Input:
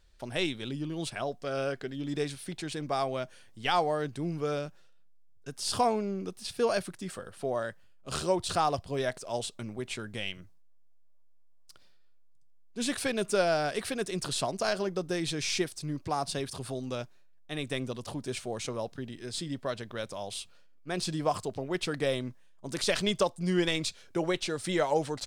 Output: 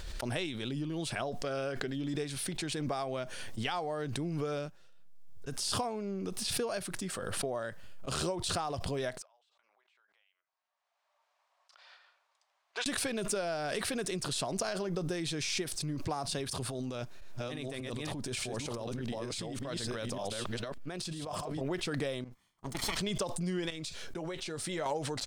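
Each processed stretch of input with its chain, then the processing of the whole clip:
9.22–12.86 s: high-pass 810 Hz 24 dB/octave + compression 3:1, threshold -52 dBFS + tape spacing loss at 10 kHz 25 dB
16.62–21.61 s: chunks repeated in reverse 594 ms, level -2 dB + compressor with a negative ratio -39 dBFS
22.24–22.97 s: comb filter that takes the minimum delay 0.93 ms + upward expansion 2.5:1, over -43 dBFS
23.70–24.86 s: compression 3:1, threshold -39 dBFS + doubling 13 ms -11 dB
whole clip: compression, threshold -32 dBFS; gate -48 dBFS, range -15 dB; swell ahead of each attack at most 25 dB/s

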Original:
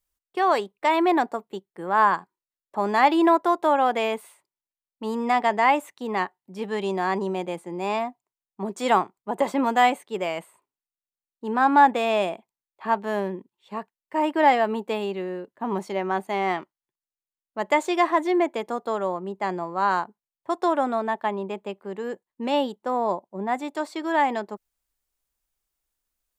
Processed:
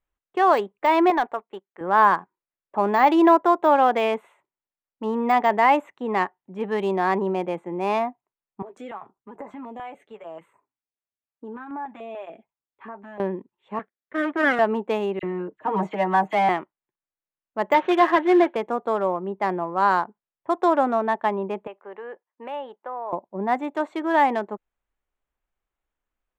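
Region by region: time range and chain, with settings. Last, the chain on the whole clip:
1.10–1.81 s: high-pass 1.1 kHz 6 dB/octave + treble shelf 4.4 kHz -6.5 dB + waveshaping leveller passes 1
8.62–13.20 s: compression 3:1, threshold -38 dBFS + comb of notches 180 Hz + step-sequenced notch 6.8 Hz 210–3300 Hz
13.79–14.59 s: comb filter that takes the minimum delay 0.55 ms + band-pass 260–4900 Hz + treble shelf 3.4 kHz -7.5 dB
15.19–16.49 s: comb 6.4 ms, depth 89% + phase dispersion lows, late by 40 ms, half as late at 2.2 kHz
17.74–18.56 s: CVSD coder 32 kbps + cabinet simulation 130–4800 Hz, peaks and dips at 150 Hz -9 dB, 1.7 kHz +7 dB, 3.1 kHz +6 dB + comb 5.5 ms, depth 39%
21.67–23.13 s: band-pass 610–3200 Hz + compression 2:1, threshold -37 dBFS
whole clip: local Wiener filter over 9 samples; de-esser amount 80%; tone controls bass -2 dB, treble -6 dB; trim +3.5 dB

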